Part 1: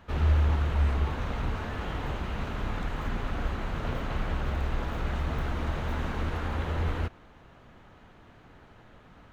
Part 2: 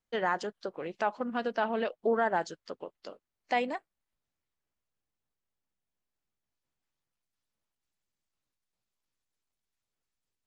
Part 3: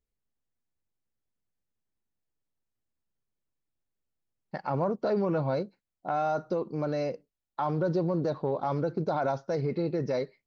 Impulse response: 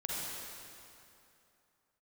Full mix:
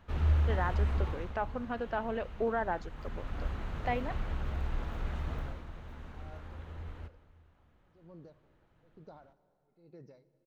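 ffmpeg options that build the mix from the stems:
-filter_complex "[0:a]volume=0.944,afade=t=out:st=1.06:d=0.27:silence=0.354813,afade=t=in:st=2.92:d=0.56:silence=0.421697,afade=t=out:st=5.32:d=0.32:silence=0.334965,asplit=2[s0][s1];[s1]volume=0.15[s2];[1:a]bass=f=250:g=0,treble=f=4000:g=-15,adelay=350,volume=0.596[s3];[2:a]acompressor=threshold=0.0126:ratio=3,aeval=exprs='val(0)*pow(10,-35*(0.5-0.5*cos(2*PI*1.1*n/s))/20)':c=same,volume=0.2,asplit=2[s4][s5];[s5]volume=0.112[s6];[3:a]atrim=start_sample=2205[s7];[s2][s6]amix=inputs=2:normalize=0[s8];[s8][s7]afir=irnorm=-1:irlink=0[s9];[s0][s3][s4][s9]amix=inputs=4:normalize=0,lowshelf=f=97:g=6"

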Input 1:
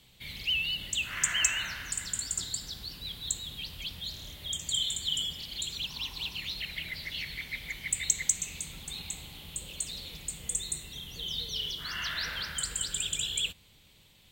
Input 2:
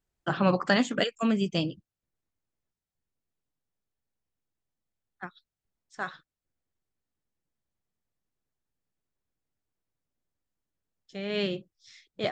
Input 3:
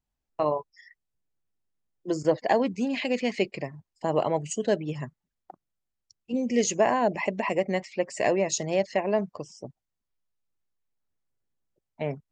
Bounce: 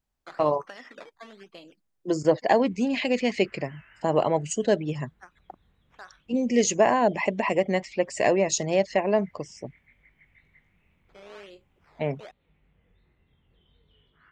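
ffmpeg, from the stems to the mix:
-filter_complex "[0:a]flanger=delay=20:depth=3:speed=0.5,lowpass=f=2100:w=0.5412,lowpass=f=2100:w=1.3066,adelay=2350,volume=0.178[s0];[1:a]acompressor=threshold=0.0447:ratio=6,acrusher=samples=11:mix=1:aa=0.000001:lfo=1:lforange=11:lforate=1.1,highpass=450,volume=0.562[s1];[2:a]volume=1.33[s2];[s0][s1]amix=inputs=2:normalize=0,lowpass=3900,acompressor=threshold=0.00355:ratio=1.5,volume=1[s3];[s2][s3]amix=inputs=2:normalize=0"

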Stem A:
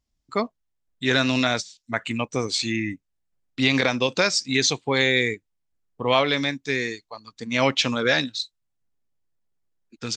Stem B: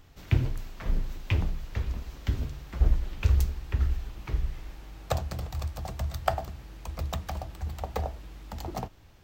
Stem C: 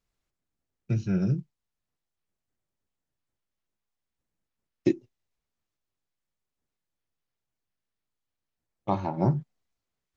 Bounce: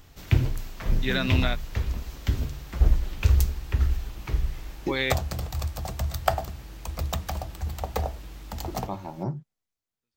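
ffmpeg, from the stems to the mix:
-filter_complex "[0:a]lowpass=f=4000:w=0.5412,lowpass=f=4000:w=1.3066,volume=0.447[s0];[1:a]volume=1.41[s1];[2:a]volume=0.447,asplit=2[s2][s3];[s3]apad=whole_len=448071[s4];[s0][s4]sidechaingate=range=0.00251:threshold=0.002:ratio=16:detection=peak[s5];[s5][s1][s2]amix=inputs=3:normalize=0,highshelf=f=5100:g=6.5"

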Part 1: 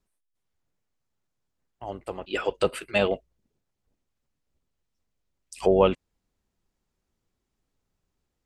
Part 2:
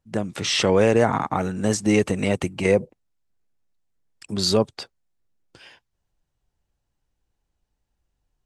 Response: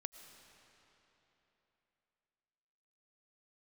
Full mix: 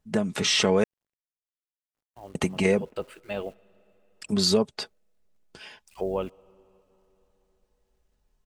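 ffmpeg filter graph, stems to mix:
-filter_complex "[0:a]highshelf=f=2200:g=-7,acrusher=bits=9:dc=4:mix=0:aa=0.000001,adelay=350,volume=0.316,asplit=2[s0][s1];[s1]volume=0.251[s2];[1:a]aecho=1:1:4.7:0.54,volume=1.19,asplit=3[s3][s4][s5];[s3]atrim=end=0.84,asetpts=PTS-STARTPTS,afade=t=out:st=0.836:d=0.004:c=hsin[s6];[s4]atrim=start=0.84:end=2.35,asetpts=PTS-STARTPTS,volume=0[s7];[s5]atrim=start=2.35,asetpts=PTS-STARTPTS,afade=t=in:d=0.004:c=hsin[s8];[s6][s7][s8]concat=n=3:v=0:a=1[s9];[2:a]atrim=start_sample=2205[s10];[s2][s10]afir=irnorm=-1:irlink=0[s11];[s0][s9][s11]amix=inputs=3:normalize=0,acompressor=threshold=0.0794:ratio=2"

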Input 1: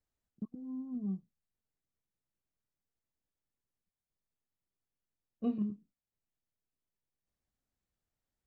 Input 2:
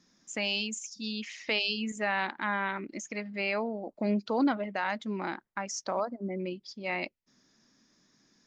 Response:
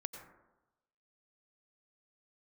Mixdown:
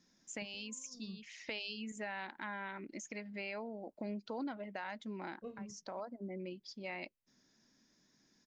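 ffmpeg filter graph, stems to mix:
-filter_complex "[0:a]aecho=1:1:1.9:0.86,volume=0.335,asplit=2[s0][s1];[1:a]bandreject=f=1200:w=8,acompressor=threshold=0.0141:ratio=2.5,volume=0.562[s2];[s1]apad=whole_len=373157[s3];[s2][s3]sidechaincompress=threshold=0.002:ratio=8:attack=20:release=390[s4];[s0][s4]amix=inputs=2:normalize=0"

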